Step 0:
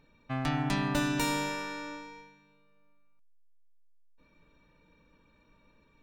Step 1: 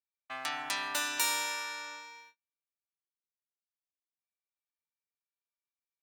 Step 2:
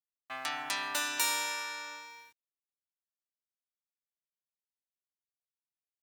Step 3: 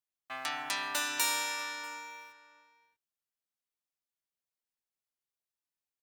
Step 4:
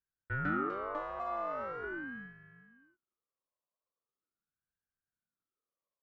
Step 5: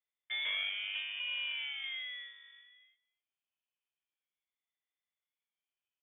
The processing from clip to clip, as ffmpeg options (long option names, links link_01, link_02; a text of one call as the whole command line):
ffmpeg -i in.wav -af "agate=range=-37dB:threshold=-54dB:ratio=16:detection=peak,highpass=920,highshelf=frequency=5300:gain=10" out.wav
ffmpeg -i in.wav -af "acrusher=bits=10:mix=0:aa=0.000001" out.wav
ffmpeg -i in.wav -filter_complex "[0:a]asplit=2[link_01][link_02];[link_02]adelay=641.4,volume=-15dB,highshelf=frequency=4000:gain=-14.4[link_03];[link_01][link_03]amix=inputs=2:normalize=0" out.wav
ffmpeg -i in.wav -af "alimiter=limit=-20.5dB:level=0:latency=1:release=429,lowpass=frequency=830:width_type=q:width=6.8,aeval=exprs='val(0)*sin(2*PI*500*n/s+500*0.55/0.41*sin(2*PI*0.41*n/s))':channel_layout=same" out.wav
ffmpeg -i in.wav -af "asoftclip=type=tanh:threshold=-28.5dB,aecho=1:1:268:0.075,lowpass=frequency=3100:width_type=q:width=0.5098,lowpass=frequency=3100:width_type=q:width=0.6013,lowpass=frequency=3100:width_type=q:width=0.9,lowpass=frequency=3100:width_type=q:width=2.563,afreqshift=-3600" out.wav